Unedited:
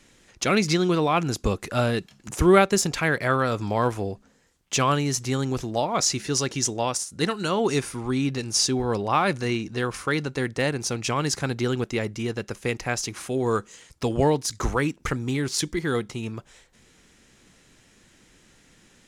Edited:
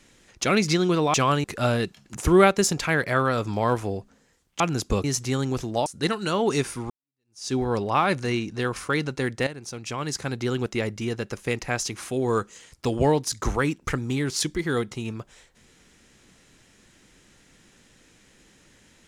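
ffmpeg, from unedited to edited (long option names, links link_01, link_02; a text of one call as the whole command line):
ffmpeg -i in.wav -filter_complex "[0:a]asplit=8[link_01][link_02][link_03][link_04][link_05][link_06][link_07][link_08];[link_01]atrim=end=1.142[link_09];[link_02]atrim=start=4.738:end=5.042[link_10];[link_03]atrim=start=1.578:end=4.742[link_11];[link_04]atrim=start=1.138:end=1.582[link_12];[link_05]atrim=start=5.038:end=5.862[link_13];[link_06]atrim=start=7.038:end=8.08,asetpts=PTS-STARTPTS,afade=type=out:start_time=1.038:duration=0.004:curve=hsin[link_14];[link_07]atrim=start=8.08:end=10.65,asetpts=PTS-STARTPTS,afade=type=in:duration=0.63:curve=exp,afade=type=out:start_time=2.566:duration=0.004:curve=hsin:silence=0.223872[link_15];[link_08]atrim=start=10.65,asetpts=PTS-STARTPTS,afade=type=in:duration=1.25:silence=0.223872[link_16];[link_09][link_10]acrossfade=duration=0.004:curve1=hsin:curve2=hsin[link_17];[link_17][link_11]acrossfade=duration=0.004:curve1=hsin:curve2=hsin[link_18];[link_18][link_12]acrossfade=duration=0.004:curve1=hsin:curve2=hsin[link_19];[link_19][link_13]acrossfade=duration=0.004:curve1=hsin:curve2=hsin[link_20];[link_14][link_15][link_16]concat=n=3:v=0:a=1[link_21];[link_20][link_21]acrossfade=duration=0.004:curve1=hsin:curve2=hsin" out.wav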